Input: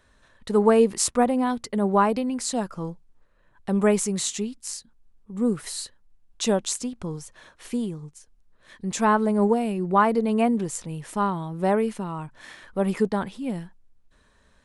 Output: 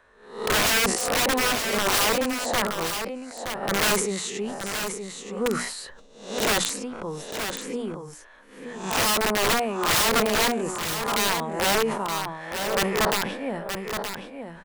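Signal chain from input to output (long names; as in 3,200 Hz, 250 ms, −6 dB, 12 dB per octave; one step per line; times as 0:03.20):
peak hold with a rise ahead of every peak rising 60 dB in 0.55 s
three-way crossover with the lows and the highs turned down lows −13 dB, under 410 Hz, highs −13 dB, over 2,400 Hz
mains-hum notches 60/120/180/240/300 Hz
wrap-around overflow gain 21.5 dB
single-tap delay 922 ms −7.5 dB
level that may fall only so fast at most 56 dB per second
level +5 dB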